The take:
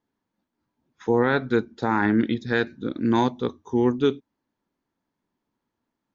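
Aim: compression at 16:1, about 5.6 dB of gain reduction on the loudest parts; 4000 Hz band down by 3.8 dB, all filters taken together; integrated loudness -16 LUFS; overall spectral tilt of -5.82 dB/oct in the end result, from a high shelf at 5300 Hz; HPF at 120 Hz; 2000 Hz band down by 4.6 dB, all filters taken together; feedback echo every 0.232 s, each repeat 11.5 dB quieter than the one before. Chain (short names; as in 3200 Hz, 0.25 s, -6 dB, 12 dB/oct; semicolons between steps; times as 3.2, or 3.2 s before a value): HPF 120 Hz; bell 2000 Hz -6.5 dB; bell 4000 Hz -4.5 dB; high shelf 5300 Hz +6 dB; compressor 16:1, threshold -21 dBFS; feedback echo 0.232 s, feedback 27%, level -11.5 dB; gain +12.5 dB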